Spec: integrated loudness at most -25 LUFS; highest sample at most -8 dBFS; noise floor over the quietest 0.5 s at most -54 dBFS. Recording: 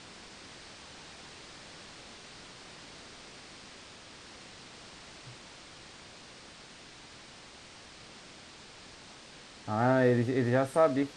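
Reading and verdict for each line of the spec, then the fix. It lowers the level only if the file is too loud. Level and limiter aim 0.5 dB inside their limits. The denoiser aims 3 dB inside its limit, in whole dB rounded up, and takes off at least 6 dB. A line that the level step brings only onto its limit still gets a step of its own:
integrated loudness -27.5 LUFS: pass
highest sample -13.0 dBFS: pass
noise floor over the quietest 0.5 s -51 dBFS: fail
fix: noise reduction 6 dB, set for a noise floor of -51 dBFS

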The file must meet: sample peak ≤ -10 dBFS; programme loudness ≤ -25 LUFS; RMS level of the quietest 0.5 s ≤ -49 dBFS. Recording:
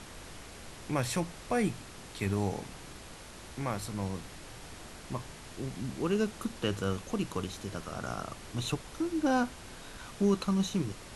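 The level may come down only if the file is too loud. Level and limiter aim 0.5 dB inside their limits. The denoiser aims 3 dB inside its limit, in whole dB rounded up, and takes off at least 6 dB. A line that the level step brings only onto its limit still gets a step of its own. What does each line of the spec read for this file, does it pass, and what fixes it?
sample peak -15.5 dBFS: pass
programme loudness -34.0 LUFS: pass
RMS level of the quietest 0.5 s -48 dBFS: fail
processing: noise reduction 6 dB, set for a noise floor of -48 dBFS

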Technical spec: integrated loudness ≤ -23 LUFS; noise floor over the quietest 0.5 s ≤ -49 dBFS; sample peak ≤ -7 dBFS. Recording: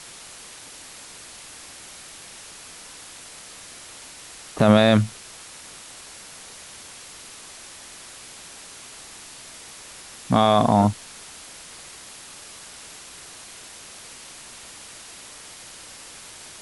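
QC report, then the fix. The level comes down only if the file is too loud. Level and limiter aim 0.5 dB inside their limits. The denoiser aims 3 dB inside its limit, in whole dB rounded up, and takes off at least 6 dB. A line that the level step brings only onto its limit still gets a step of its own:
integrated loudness -19.0 LUFS: fail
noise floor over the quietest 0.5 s -43 dBFS: fail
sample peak -5.5 dBFS: fail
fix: noise reduction 6 dB, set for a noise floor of -43 dBFS; trim -4.5 dB

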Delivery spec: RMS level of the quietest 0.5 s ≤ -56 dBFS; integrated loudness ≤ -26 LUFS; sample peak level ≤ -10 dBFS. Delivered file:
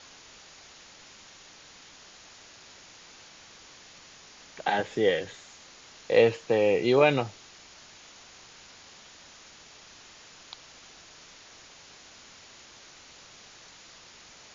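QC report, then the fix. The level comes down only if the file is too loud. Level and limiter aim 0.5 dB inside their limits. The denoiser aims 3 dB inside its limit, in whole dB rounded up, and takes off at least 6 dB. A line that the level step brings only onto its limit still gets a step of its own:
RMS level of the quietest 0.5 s -51 dBFS: fail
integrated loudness -25.0 LUFS: fail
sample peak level -8.0 dBFS: fail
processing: noise reduction 7 dB, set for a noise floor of -51 dBFS; trim -1.5 dB; peak limiter -10.5 dBFS

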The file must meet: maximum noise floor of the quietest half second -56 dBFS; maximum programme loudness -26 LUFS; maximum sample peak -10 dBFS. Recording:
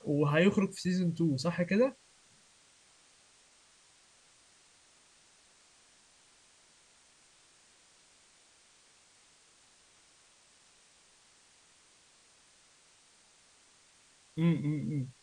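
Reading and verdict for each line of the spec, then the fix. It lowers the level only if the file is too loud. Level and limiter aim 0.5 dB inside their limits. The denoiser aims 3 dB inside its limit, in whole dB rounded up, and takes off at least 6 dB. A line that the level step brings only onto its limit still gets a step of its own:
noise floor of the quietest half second -64 dBFS: pass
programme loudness -30.5 LUFS: pass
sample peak -14.0 dBFS: pass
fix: none needed

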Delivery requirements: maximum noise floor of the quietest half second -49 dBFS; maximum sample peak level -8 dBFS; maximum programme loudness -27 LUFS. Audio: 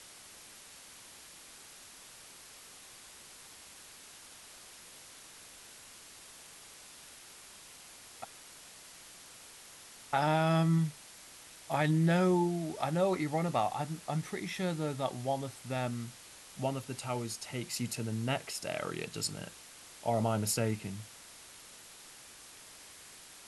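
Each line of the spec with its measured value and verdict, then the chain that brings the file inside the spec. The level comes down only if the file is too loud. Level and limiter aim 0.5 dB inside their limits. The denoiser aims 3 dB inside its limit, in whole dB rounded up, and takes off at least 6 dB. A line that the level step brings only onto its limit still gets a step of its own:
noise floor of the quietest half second -53 dBFS: pass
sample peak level -17.0 dBFS: pass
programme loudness -33.0 LUFS: pass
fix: none needed

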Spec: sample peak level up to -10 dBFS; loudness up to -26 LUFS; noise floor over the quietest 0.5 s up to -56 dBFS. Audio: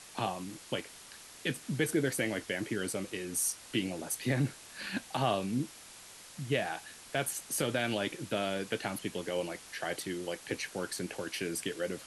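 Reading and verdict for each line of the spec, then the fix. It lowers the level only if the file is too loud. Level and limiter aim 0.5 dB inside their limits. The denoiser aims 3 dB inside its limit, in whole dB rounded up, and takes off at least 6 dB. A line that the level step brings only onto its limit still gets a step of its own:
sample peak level -17.5 dBFS: pass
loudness -35.0 LUFS: pass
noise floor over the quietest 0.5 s -52 dBFS: fail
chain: noise reduction 7 dB, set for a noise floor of -52 dBFS

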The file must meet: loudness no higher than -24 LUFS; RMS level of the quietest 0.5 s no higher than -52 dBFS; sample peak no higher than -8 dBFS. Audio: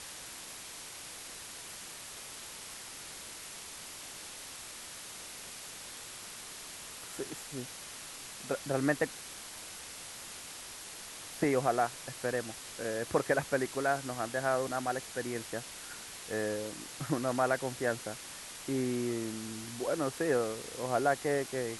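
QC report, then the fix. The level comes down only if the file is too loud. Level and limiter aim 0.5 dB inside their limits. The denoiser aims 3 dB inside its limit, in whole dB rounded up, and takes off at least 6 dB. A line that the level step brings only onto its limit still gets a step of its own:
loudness -36.0 LUFS: pass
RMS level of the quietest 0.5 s -46 dBFS: fail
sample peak -15.0 dBFS: pass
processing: noise reduction 9 dB, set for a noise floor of -46 dBFS

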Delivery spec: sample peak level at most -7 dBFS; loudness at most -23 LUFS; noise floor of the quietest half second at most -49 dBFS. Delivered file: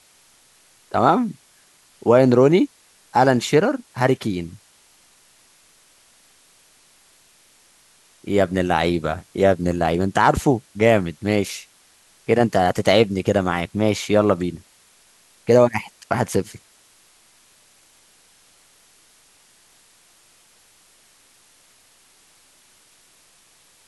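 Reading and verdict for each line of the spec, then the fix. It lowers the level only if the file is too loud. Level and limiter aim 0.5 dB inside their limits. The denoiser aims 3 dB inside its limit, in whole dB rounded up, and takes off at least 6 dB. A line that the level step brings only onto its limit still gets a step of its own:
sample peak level -2.0 dBFS: fail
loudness -19.5 LUFS: fail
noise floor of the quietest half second -55 dBFS: pass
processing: trim -4 dB; peak limiter -7.5 dBFS

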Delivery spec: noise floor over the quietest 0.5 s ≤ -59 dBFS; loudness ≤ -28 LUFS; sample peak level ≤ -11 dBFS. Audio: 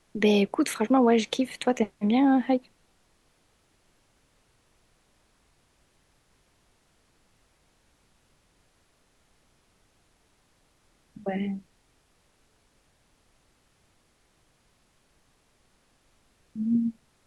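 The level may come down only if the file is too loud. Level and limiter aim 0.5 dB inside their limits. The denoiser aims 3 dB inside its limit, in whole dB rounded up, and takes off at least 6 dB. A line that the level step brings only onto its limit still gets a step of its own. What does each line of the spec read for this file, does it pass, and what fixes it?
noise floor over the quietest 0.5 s -67 dBFS: pass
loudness -25.5 LUFS: fail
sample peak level -9.5 dBFS: fail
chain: trim -3 dB

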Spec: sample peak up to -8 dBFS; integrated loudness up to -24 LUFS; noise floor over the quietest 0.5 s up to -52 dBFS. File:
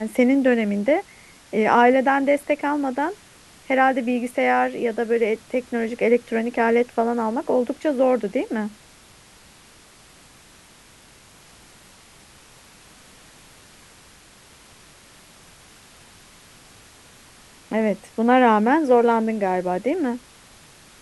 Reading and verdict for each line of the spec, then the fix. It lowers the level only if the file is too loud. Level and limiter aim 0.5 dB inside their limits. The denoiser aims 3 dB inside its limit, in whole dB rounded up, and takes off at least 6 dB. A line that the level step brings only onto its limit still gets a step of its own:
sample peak -3.5 dBFS: fail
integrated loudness -21.0 LUFS: fail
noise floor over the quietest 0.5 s -50 dBFS: fail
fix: trim -3.5 dB; peak limiter -8.5 dBFS

